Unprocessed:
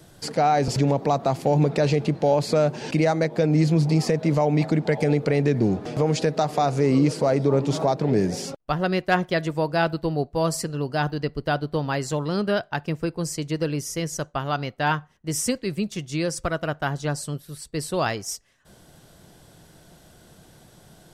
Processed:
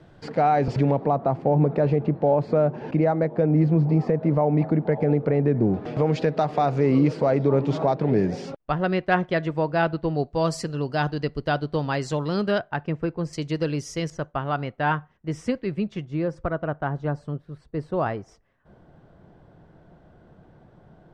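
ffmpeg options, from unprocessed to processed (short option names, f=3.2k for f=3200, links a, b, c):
-af "asetnsamples=n=441:p=0,asendcmd='1.05 lowpass f 1300;5.74 lowpass f 2800;10.15 lowpass f 5500;12.58 lowpass f 2200;13.33 lowpass f 5100;14.1 lowpass f 2200;16.05 lowpass f 1300',lowpass=2.3k"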